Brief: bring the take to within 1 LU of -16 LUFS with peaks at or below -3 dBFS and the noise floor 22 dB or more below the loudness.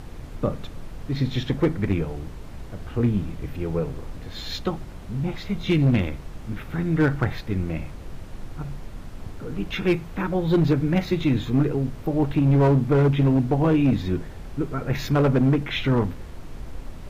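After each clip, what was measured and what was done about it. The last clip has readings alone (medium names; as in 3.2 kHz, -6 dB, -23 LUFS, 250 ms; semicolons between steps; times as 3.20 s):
clipped samples 1.3%; clipping level -13.5 dBFS; noise floor -39 dBFS; noise floor target -46 dBFS; loudness -23.5 LUFS; peak level -13.5 dBFS; loudness target -16.0 LUFS
-> clip repair -13.5 dBFS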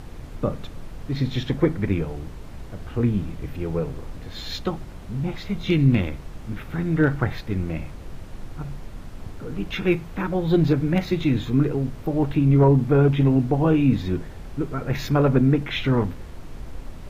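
clipped samples 0.0%; noise floor -39 dBFS; noise floor target -45 dBFS
-> noise print and reduce 6 dB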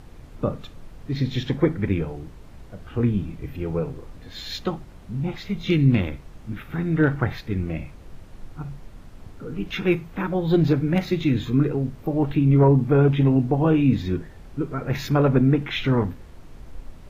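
noise floor -44 dBFS; noise floor target -45 dBFS
-> noise print and reduce 6 dB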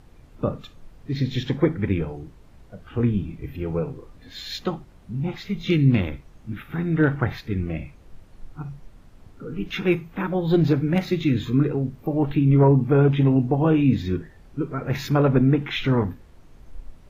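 noise floor -50 dBFS; loudness -23.0 LUFS; peak level -6.0 dBFS; loudness target -16.0 LUFS
-> trim +7 dB; peak limiter -3 dBFS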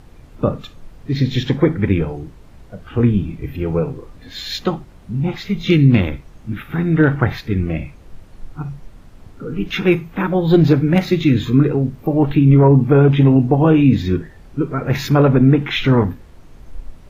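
loudness -16.5 LUFS; peak level -3.0 dBFS; noise floor -43 dBFS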